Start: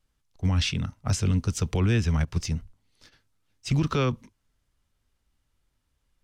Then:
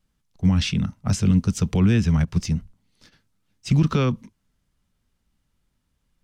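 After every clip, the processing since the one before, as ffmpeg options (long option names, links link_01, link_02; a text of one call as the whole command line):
ffmpeg -i in.wav -af "equalizer=frequency=190:width_type=o:width=0.74:gain=10,volume=1dB" out.wav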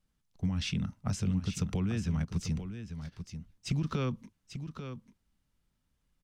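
ffmpeg -i in.wav -af "acompressor=threshold=-22dB:ratio=6,aecho=1:1:842:0.335,volume=-6dB" out.wav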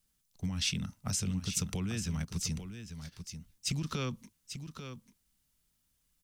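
ffmpeg -i in.wav -af "crystalizer=i=4.5:c=0,volume=-4dB" out.wav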